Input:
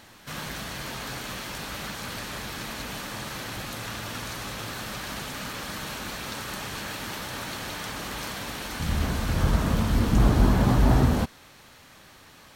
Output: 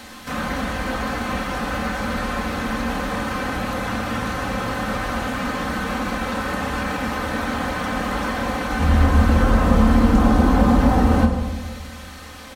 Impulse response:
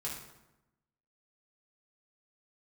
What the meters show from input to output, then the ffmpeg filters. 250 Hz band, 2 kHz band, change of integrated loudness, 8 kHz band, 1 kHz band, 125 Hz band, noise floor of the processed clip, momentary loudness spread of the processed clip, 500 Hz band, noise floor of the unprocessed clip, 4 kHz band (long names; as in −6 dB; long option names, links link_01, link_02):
+9.5 dB, +9.0 dB, +7.0 dB, −0.5 dB, +10.5 dB, +4.5 dB, −38 dBFS, 9 LU, +9.5 dB, −52 dBFS, +2.0 dB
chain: -filter_complex "[0:a]aecho=1:1:3.9:0.65,acrossover=split=260|2000[link_01][link_02][link_03];[link_01]acompressor=threshold=-28dB:ratio=4[link_04];[link_02]acompressor=threshold=-29dB:ratio=4[link_05];[link_03]acompressor=threshold=-52dB:ratio=4[link_06];[link_04][link_05][link_06]amix=inputs=3:normalize=0,asplit=2[link_07][link_08];[1:a]atrim=start_sample=2205,asetrate=23814,aresample=44100[link_09];[link_08][link_09]afir=irnorm=-1:irlink=0,volume=-5dB[link_10];[link_07][link_10]amix=inputs=2:normalize=0,volume=6.5dB"